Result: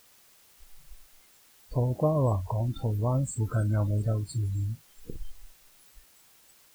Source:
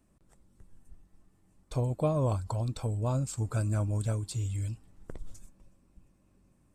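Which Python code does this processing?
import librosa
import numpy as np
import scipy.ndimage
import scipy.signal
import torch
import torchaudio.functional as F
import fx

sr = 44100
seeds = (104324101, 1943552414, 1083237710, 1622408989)

y = fx.quant_dither(x, sr, seeds[0], bits=6, dither='triangular')
y = fx.noise_reduce_blind(y, sr, reduce_db=26)
y = y * 10.0 ** (3.0 / 20.0)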